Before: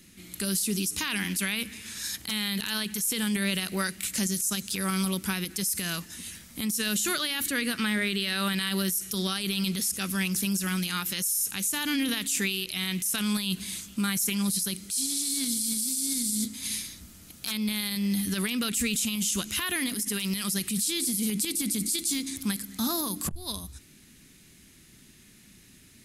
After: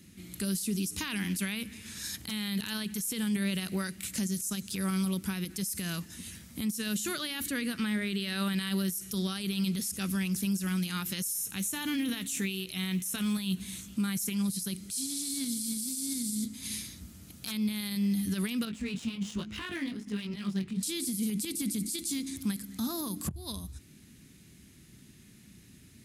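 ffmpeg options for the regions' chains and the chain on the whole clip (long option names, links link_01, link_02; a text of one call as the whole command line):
ffmpeg -i in.wav -filter_complex "[0:a]asettb=1/sr,asplit=3[link_01][link_02][link_03];[link_01]atrim=end=11.354[link_04];[link_02]atrim=start=11.35:end=13.88,asetpts=PTS-STARTPTS,afade=type=in:duration=0.004:curve=qsin,afade=type=out:start_time=2.526:duration=0.004:curve=qsin,bandreject=frequency=4800:width=8.7,asplit=2[link_05][link_06];[link_06]adelay=16,volume=-12dB[link_07];[link_05][link_07]amix=inputs=2:normalize=0,atrim=end_sample=111573,acrusher=bits=7:mode=log:mix=0:aa=0.000001[link_08];[link_03]atrim=start=13.876[link_09];[link_04][link_08]acrossfade=duration=0.004:curve1=hsin:curve2=qsin[link_10];[link_10][link_09]acrossfade=duration=0.004:curve1=qsin:curve2=hsin,asettb=1/sr,asplit=3[link_11][link_12][link_13];[link_11]atrim=end=18.654[link_14];[link_12]atrim=start=18.65:end=20.83,asetpts=PTS-STARTPTS,afade=type=in:duration=0.004:curve=qsin,afade=type=out:start_time=2.176:duration=0.004:curve=qsin,highshelf=frequency=6000:gain=-4.5,flanger=delay=18:depth=3.8:speed=1.2,adynamicsmooth=sensitivity=6:basefreq=2300[link_15];[link_13]atrim=start=20.826[link_16];[link_14][link_15]acrossfade=duration=0.004:curve1=hsin:curve2=qsin[link_17];[link_17][link_16]acrossfade=duration=0.004:curve1=qsin:curve2=hsin,highpass=64,lowshelf=frequency=290:gain=10,alimiter=limit=-18.5dB:level=0:latency=1:release=418,volume=-4.5dB" out.wav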